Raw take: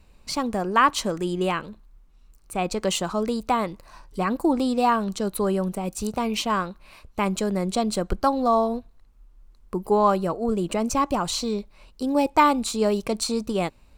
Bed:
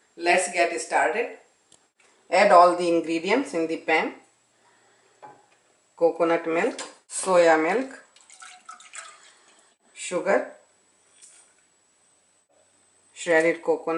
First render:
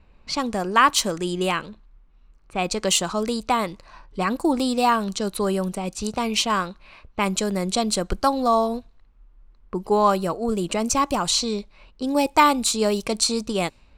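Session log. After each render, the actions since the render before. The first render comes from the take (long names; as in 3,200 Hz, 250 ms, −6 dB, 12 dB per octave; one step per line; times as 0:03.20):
low-pass that shuts in the quiet parts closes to 1,900 Hz, open at −20 dBFS
high-shelf EQ 2,300 Hz +9 dB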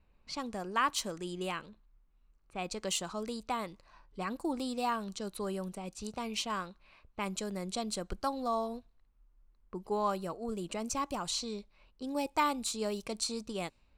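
level −13.5 dB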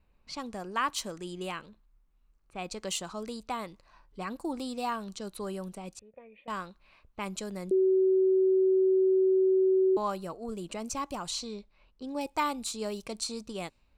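0:05.99–0:06.48: formant resonators in series e
0:07.71–0:09.97: beep over 378 Hz −20.5 dBFS
0:11.47–0:12.21: high-frequency loss of the air 60 metres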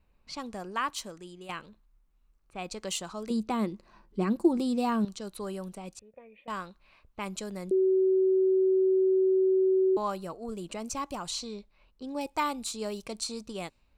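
0:00.65–0:01.49: fade out, to −10.5 dB
0:03.30–0:05.05: hollow resonant body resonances 210/350 Hz, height 16 dB, ringing for 55 ms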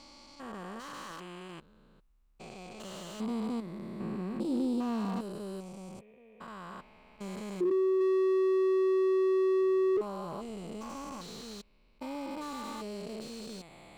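spectrum averaged block by block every 400 ms
slew-rate limiting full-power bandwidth 20 Hz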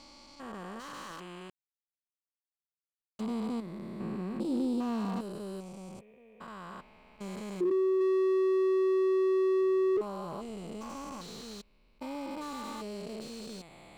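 0:01.50–0:03.19: silence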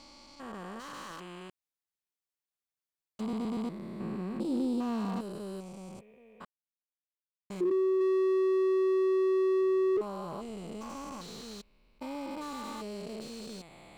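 0:03.21: stutter in place 0.12 s, 4 plays
0:06.45–0:07.50: silence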